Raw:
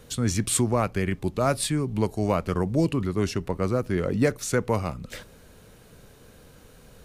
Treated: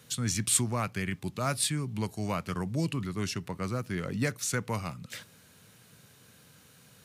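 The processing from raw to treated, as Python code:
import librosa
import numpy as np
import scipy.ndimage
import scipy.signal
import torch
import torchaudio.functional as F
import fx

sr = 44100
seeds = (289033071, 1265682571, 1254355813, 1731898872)

y = scipy.signal.sosfilt(scipy.signal.butter(4, 110.0, 'highpass', fs=sr, output='sos'), x)
y = fx.peak_eq(y, sr, hz=450.0, db=-12.0, octaves=2.4)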